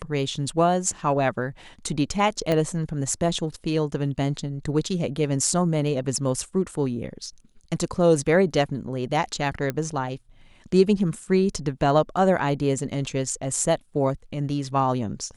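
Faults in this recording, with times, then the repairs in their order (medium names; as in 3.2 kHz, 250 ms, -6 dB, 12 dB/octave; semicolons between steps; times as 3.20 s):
2.52 s: pop -11 dBFS
9.70 s: pop -13 dBFS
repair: de-click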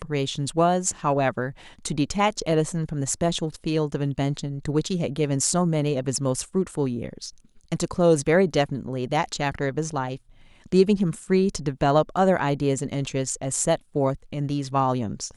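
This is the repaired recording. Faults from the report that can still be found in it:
2.52 s: pop
9.70 s: pop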